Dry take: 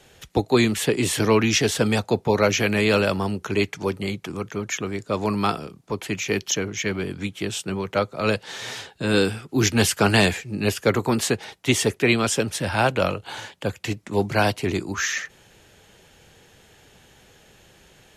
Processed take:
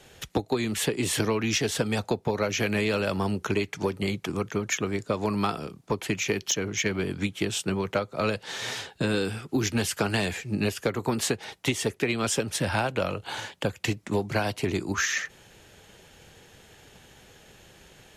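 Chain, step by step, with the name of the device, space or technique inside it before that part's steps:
drum-bus smash (transient designer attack +5 dB, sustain 0 dB; downward compressor 12 to 1, threshold −21 dBFS, peak gain reduction 13.5 dB; soft clipping −13 dBFS, distortion −23 dB)

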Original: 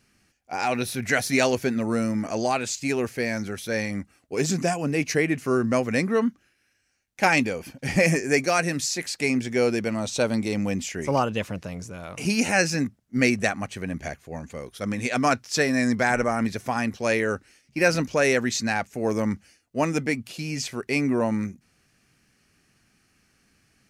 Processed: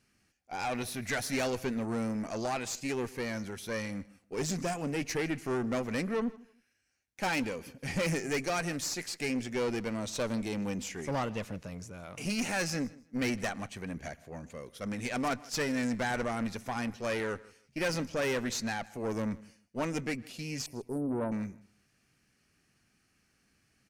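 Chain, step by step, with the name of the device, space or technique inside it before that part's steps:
0:20.66–0:21.32: Chebyshev band-stop filter 1,000–8,900 Hz, order 5
rockabilly slapback (tube saturation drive 21 dB, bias 0.5; tape delay 110 ms, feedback 24%, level −24 dB, low-pass 4,500 Hz)
repeating echo 157 ms, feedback 20%, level −22 dB
level −5 dB

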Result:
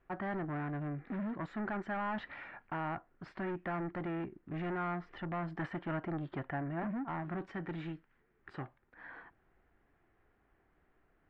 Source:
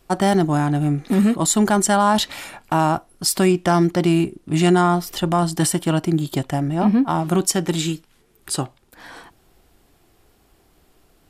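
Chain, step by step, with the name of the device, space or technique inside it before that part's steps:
overdriven synthesiser ladder filter (soft clipping −20 dBFS, distortion −9 dB; transistor ladder low-pass 2,100 Hz, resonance 50%)
0:05.55–0:06.80: parametric band 990 Hz +4.5 dB 2.9 octaves
level −5.5 dB

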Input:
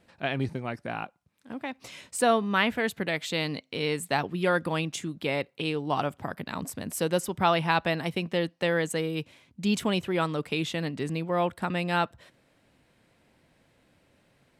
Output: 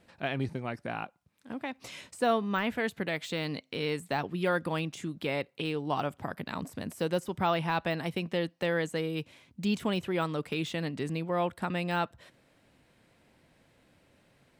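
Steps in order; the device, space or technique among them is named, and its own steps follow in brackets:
parallel compression (in parallel at −3 dB: downward compressor, threshold −36 dBFS, peak gain reduction 17 dB)
on the sum: de-essing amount 80%
level −4.5 dB

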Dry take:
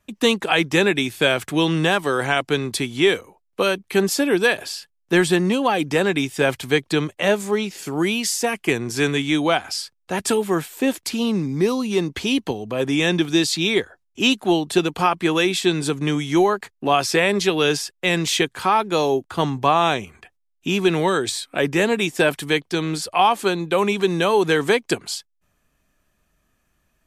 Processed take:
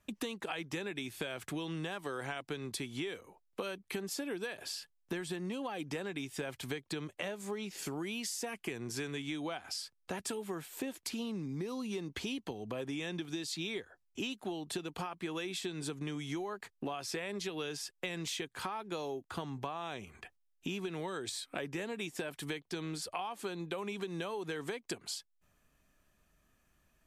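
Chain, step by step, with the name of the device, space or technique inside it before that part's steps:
serial compression, leveller first (downward compressor 3 to 1, threshold −18 dBFS, peak gain reduction 5.5 dB; downward compressor 5 to 1, threshold −33 dBFS, peak gain reduction 15.5 dB)
level −4.5 dB

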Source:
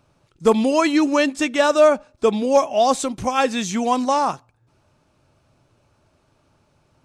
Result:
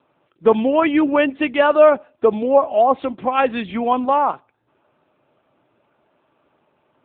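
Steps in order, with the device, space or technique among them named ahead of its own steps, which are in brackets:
0:02.10–0:03.39: treble cut that deepens with the level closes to 1,400 Hz, closed at −11 dBFS
telephone (band-pass filter 260–3,500 Hz; level +3 dB; AMR narrowband 7.95 kbit/s 8,000 Hz)

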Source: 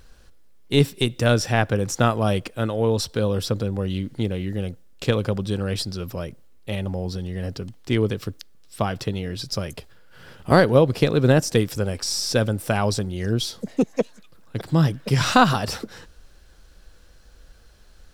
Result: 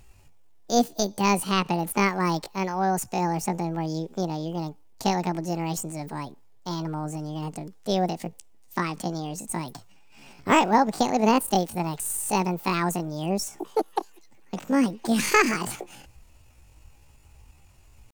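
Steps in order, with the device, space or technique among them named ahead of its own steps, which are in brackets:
chipmunk voice (pitch shifter +9 semitones)
level −3.5 dB

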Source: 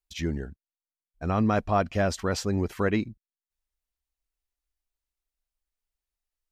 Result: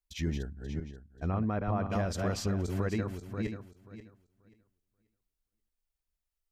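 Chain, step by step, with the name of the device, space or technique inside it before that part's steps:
feedback delay that plays each chunk backwards 267 ms, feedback 43%, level −5 dB
0:00.45–0:01.90: treble cut that deepens with the level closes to 2,300 Hz, closed at −22.5 dBFS
ASMR close-microphone chain (low-shelf EQ 200 Hz +6.5 dB; downward compressor 5 to 1, threshold −22 dBFS, peak gain reduction 7 dB; high-shelf EQ 10,000 Hz +3.5 dB)
level −5 dB

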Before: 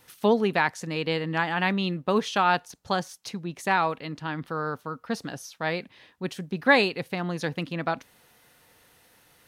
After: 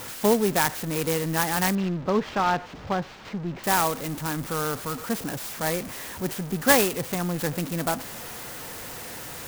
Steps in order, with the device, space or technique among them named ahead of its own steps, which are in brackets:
early CD player with a faulty converter (converter with a step at zero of −31.5 dBFS; converter with an unsteady clock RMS 0.082 ms)
0:01.75–0:03.64: high-frequency loss of the air 210 metres

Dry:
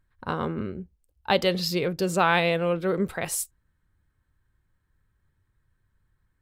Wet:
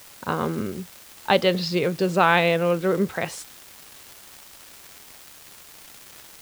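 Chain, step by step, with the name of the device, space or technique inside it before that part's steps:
78 rpm shellac record (band-pass filter 110–4,400 Hz; surface crackle 320 per second −36 dBFS; white noise bed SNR 22 dB)
level +3.5 dB

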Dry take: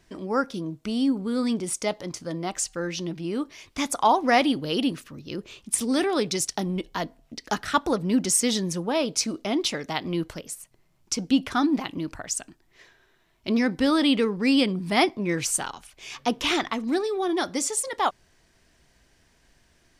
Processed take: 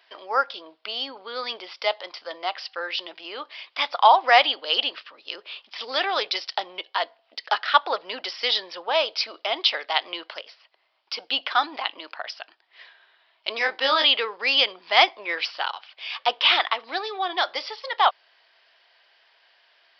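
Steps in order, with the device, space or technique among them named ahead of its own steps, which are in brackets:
musical greeting card (downsampling to 11,025 Hz; high-pass filter 620 Hz 24 dB per octave; parametric band 3,100 Hz +5 dB 0.38 octaves)
0:13.58–0:14.06: double-tracking delay 26 ms −4 dB
level +5.5 dB

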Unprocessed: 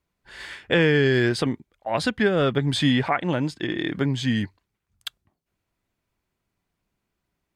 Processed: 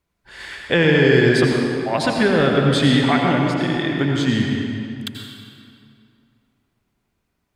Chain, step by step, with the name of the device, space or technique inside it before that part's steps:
stairwell (convolution reverb RT60 2.5 s, pre-delay 78 ms, DRR −0.5 dB)
level +2.5 dB

